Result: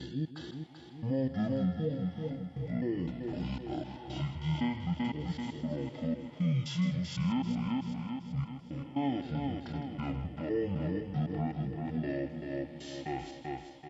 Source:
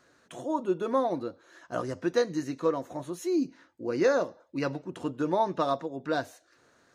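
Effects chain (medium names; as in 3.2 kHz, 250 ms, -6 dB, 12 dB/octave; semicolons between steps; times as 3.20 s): slices played last to first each 128 ms, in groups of 4; treble shelf 4 kHz +11 dB; feedback delay 193 ms, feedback 46%, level -8.5 dB; peak limiter -22.5 dBFS, peak gain reduction 10 dB; peaking EQ 1.7 kHz +4.5 dB 0.36 oct; delay 79 ms -14 dB; speed mistake 15 ips tape played at 7.5 ips; harmonic-percussive split percussive -11 dB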